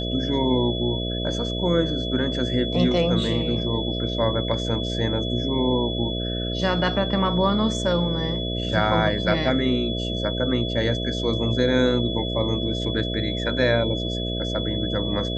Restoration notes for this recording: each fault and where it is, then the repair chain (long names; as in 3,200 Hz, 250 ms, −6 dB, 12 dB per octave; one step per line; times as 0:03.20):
mains buzz 60 Hz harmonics 11 −28 dBFS
whistle 3,400 Hz −30 dBFS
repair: notch filter 3,400 Hz, Q 30
hum removal 60 Hz, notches 11